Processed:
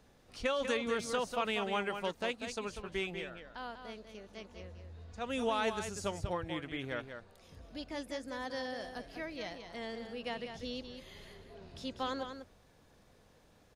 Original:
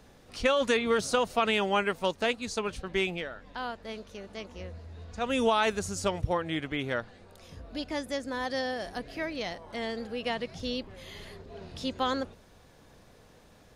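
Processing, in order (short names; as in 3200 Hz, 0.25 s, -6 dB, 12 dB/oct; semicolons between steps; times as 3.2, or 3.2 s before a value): echo 0.193 s -8 dB; gain -8 dB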